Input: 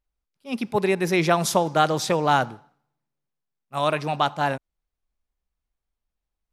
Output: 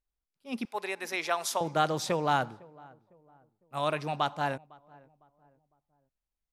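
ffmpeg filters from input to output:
ffmpeg -i in.wav -filter_complex "[0:a]asettb=1/sr,asplit=3[link_01][link_02][link_03];[link_01]atrim=end=0.654[link_04];[link_02]atrim=start=0.65:end=1.61,asetpts=PTS-STARTPTS,afade=type=in:duration=0.004:curve=qsin,afade=type=out:start_time=0.956:duration=0.004:curve=qsin,highpass=670[link_05];[link_03]atrim=start=1.606[link_06];[link_04][link_05]acrossfade=duration=0.004:curve1=hsin:curve2=qsin[link_07];[link_07][link_06]acrossfade=duration=0.004:curve1=qsin:curve2=hsin,asettb=1/sr,asplit=3[link_08][link_09][link_10];[link_08]atrim=end=2.334[link_11];[link_09]atrim=start=2.33:end=3.87,asetpts=PTS-STARTPTS,afade=type=in:duration=0.004:curve=qsin,afade=type=out:start_time=1.536:duration=0.004:curve=qsin,bandreject=frequency=5800:width=7.5[link_12];[link_10]atrim=start=3.866[link_13];[link_11][link_12]acrossfade=duration=0.004:curve1=hsin:curve2=qsin[link_14];[link_14][link_13]acrossfade=duration=0.004:curve1=qsin:curve2=hsin,asplit=2[link_15][link_16];[link_16]adelay=505,lowpass=frequency=1000:poles=1,volume=-22.5dB,asplit=2[link_17][link_18];[link_18]adelay=505,lowpass=frequency=1000:poles=1,volume=0.42,asplit=2[link_19][link_20];[link_20]adelay=505,lowpass=frequency=1000:poles=1,volume=0.42[link_21];[link_15][link_17][link_19][link_21]amix=inputs=4:normalize=0,volume=-7dB" out.wav

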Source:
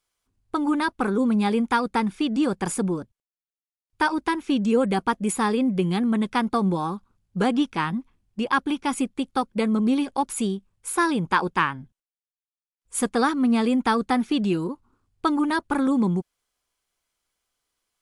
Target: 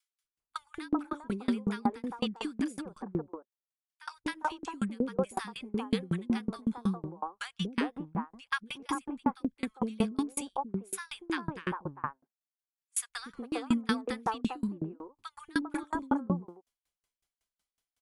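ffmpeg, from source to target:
ffmpeg -i in.wav -filter_complex "[0:a]acrossover=split=410|1300[link_01][link_02][link_03];[link_01]adelay=240[link_04];[link_02]adelay=400[link_05];[link_04][link_05][link_03]amix=inputs=3:normalize=0,aeval=exprs='val(0)*pow(10,-32*if(lt(mod(5.4*n/s,1),2*abs(5.4)/1000),1-mod(5.4*n/s,1)/(2*abs(5.4)/1000),(mod(5.4*n/s,1)-2*abs(5.4)/1000)/(1-2*abs(5.4)/1000))/20)':channel_layout=same" out.wav

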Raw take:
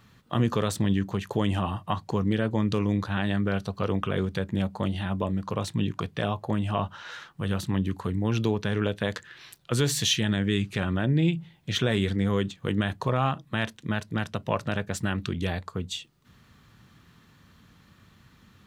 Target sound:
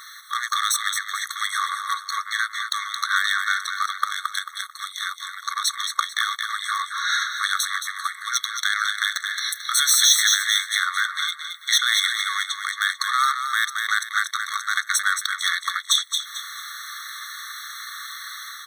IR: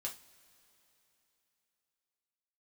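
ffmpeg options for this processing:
-filter_complex "[0:a]asplit=2[link_01][link_02];[link_02]acrusher=bits=3:mix=0:aa=0.5,volume=-5dB[link_03];[link_01][link_03]amix=inputs=2:normalize=0,highpass=230,asettb=1/sr,asplit=3[link_04][link_05][link_06];[link_04]atrim=end=4.054[link_07];[link_05]atrim=start=4.05:end=5.27,asetpts=PTS-STARTPTS,afade=type=in:duration=0.004:curve=qsin,afade=type=out:start_time=1.216:duration=0.004:curve=qsin,equalizer=frequency=1900:width=0.53:gain=-8[link_08];[link_06]atrim=start=5.266[link_09];[link_07][link_08]acrossfade=duration=0.004:curve1=hsin:curve2=qsin[link_10];[link_10][link_09]acrossfade=duration=0.004:curve1=qsin:curve2=hsin,acompressor=threshold=-52dB:ratio=2,highshelf=frequency=4000:gain=10,dynaudnorm=framelen=220:gausssize=3:maxgain=6dB,aecho=1:1:221|442|663|884:0.398|0.135|0.046|0.0156,alimiter=level_in=20.5dB:limit=-1dB:release=50:level=0:latency=1,afftfilt=real='re*eq(mod(floor(b*sr/1024/1100),2),1)':imag='im*eq(mod(floor(b*sr/1024/1100),2),1)':win_size=1024:overlap=0.75,volume=-1dB"

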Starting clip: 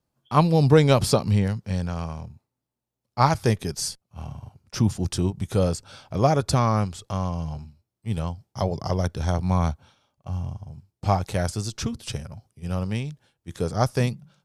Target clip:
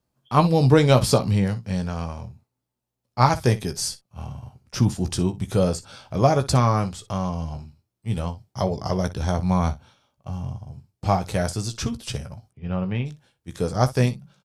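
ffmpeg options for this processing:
ffmpeg -i in.wav -filter_complex "[0:a]asplit=3[link_01][link_02][link_03];[link_01]afade=type=out:start_time=12.5:duration=0.02[link_04];[link_02]lowpass=frequency=3100:width=0.5412,lowpass=frequency=3100:width=1.3066,afade=type=in:start_time=12.5:duration=0.02,afade=type=out:start_time=13.05:duration=0.02[link_05];[link_03]afade=type=in:start_time=13.05:duration=0.02[link_06];[link_04][link_05][link_06]amix=inputs=3:normalize=0,aecho=1:1:16|60:0.376|0.15,volume=1dB" out.wav

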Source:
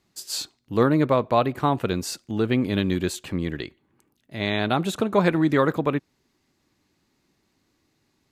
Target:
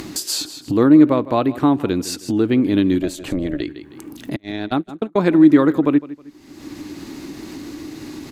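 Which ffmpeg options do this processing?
ffmpeg -i in.wav -filter_complex "[0:a]asettb=1/sr,asplit=3[link_01][link_02][link_03];[link_01]atrim=end=4.364[link_04];[link_02]atrim=start=4.36:end=5.33,asetpts=PTS-STARTPTS,afade=type=in:duration=0.004:curve=qsin,afade=type=out:start_time=0.966:duration=0.004:curve=qsin,agate=range=-45dB:threshold=-20dB:ratio=16:detection=peak[link_05];[link_03]atrim=start=5.326[link_06];[link_04][link_05]acrossfade=duration=0.004:curve1=hsin:curve2=qsin[link_07];[link_07][link_06]acrossfade=duration=0.004:curve1=qsin:curve2=hsin,equalizer=frequency=300:width_type=o:width=0.47:gain=14,aecho=1:1:158|316:0.119|0.0178,acompressor=mode=upward:threshold=-17dB:ratio=2.5,asplit=3[link_08][link_09][link_10];[link_08]afade=type=out:start_time=3.01:duration=0.02[link_11];[link_09]tremolo=f=280:d=0.621,afade=type=in:start_time=3.01:duration=0.02,afade=type=out:start_time=3.6:duration=0.02[link_12];[link_10]afade=type=in:start_time=3.6:duration=0.02[link_13];[link_11][link_12][link_13]amix=inputs=3:normalize=0,asplit=2[link_14][link_15];[link_15]acompressor=threshold=-34dB:ratio=6,volume=0.5dB[link_16];[link_14][link_16]amix=inputs=2:normalize=0,volume=-1dB" out.wav

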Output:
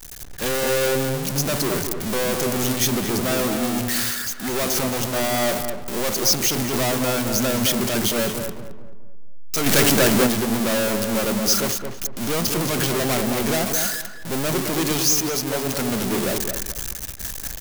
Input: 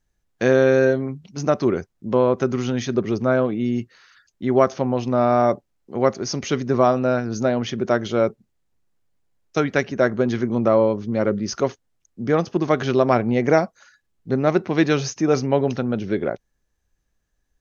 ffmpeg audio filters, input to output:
ffmpeg -i in.wav -filter_complex "[0:a]aeval=exprs='val(0)+0.5*0.119*sgn(val(0))':channel_layout=same,asettb=1/sr,asplit=3[link_01][link_02][link_03];[link_01]atrim=end=14.974[link_04];[link_02]atrim=start=14.97:end=15.79,asetpts=PTS-STARTPTS,afade=type=in:duration=0.004:curve=qsin,afade=type=out:start_time=0.816:duration=0.004:curve=qsin,lowshelf=frequency=210:gain=-8.5[link_05];[link_03]atrim=start=15.786[link_06];[link_04][link_05]acrossfade=duration=0.004:curve1=hsin:curve2=qsin[link_07];[link_07][link_06]acrossfade=duration=0.004:curve1=qsin:curve2=hsin,asoftclip=type=hard:threshold=-18dB,asplit=2[link_08][link_09];[link_09]adelay=218,lowpass=frequency=1500:poles=1,volume=-4dB,asplit=2[link_10][link_11];[link_11]adelay=218,lowpass=frequency=1500:poles=1,volume=0.39,asplit=2[link_12][link_13];[link_13]adelay=218,lowpass=frequency=1500:poles=1,volume=0.39,asplit=2[link_14][link_15];[link_15]adelay=218,lowpass=frequency=1500:poles=1,volume=0.39,asplit=2[link_16][link_17];[link_17]adelay=218,lowpass=frequency=1500:poles=1,volume=0.39[link_18];[link_08][link_10][link_12][link_14][link_16][link_18]amix=inputs=6:normalize=0,asettb=1/sr,asplit=3[link_19][link_20][link_21];[link_19]atrim=end=9.664[link_22];[link_20]atrim=start=9.66:end=10.27,asetpts=PTS-STARTPTS,afade=type=in:duration=0.004:curve=qsin,afade=type=out:start_time=0.606:duration=0.004:curve=qsin,acontrast=37[link_23];[link_21]atrim=start=10.266[link_24];[link_22][link_23]acrossfade=duration=0.004:curve1=hsin:curve2=qsin[link_25];[link_25][link_24]acrossfade=duration=0.004:curve1=qsin:curve2=hsin,agate=range=-33dB:threshold=-17dB:ratio=3:detection=peak,crystalizer=i=3:c=0,volume=-4dB" out.wav

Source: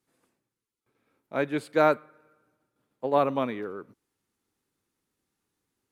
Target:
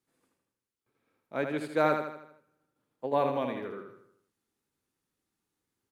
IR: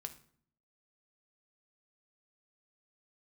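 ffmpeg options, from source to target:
-filter_complex "[0:a]asettb=1/sr,asplit=3[link_01][link_02][link_03];[link_01]atrim=end=3.064[link_04];[link_02]atrim=start=3.06:end=3.6,asetpts=PTS-STARTPTS,afade=type=in:duration=0.004:curve=qsin,afade=type=out:start_time=0.536:duration=0.004:curve=qsin,asuperstop=centerf=1300:order=4:qfactor=5.3[link_05];[link_03]atrim=start=3.596[link_06];[link_04][link_05]acrossfade=duration=0.004:curve1=hsin:curve2=qsin[link_07];[link_07][link_06]acrossfade=duration=0.004:curve1=qsin:curve2=hsin,asplit=2[link_08][link_09];[link_09]aecho=0:1:79|158|237|316|395|474:0.501|0.241|0.115|0.0554|0.0266|0.0128[link_10];[link_08][link_10]amix=inputs=2:normalize=0,volume=-4.5dB"

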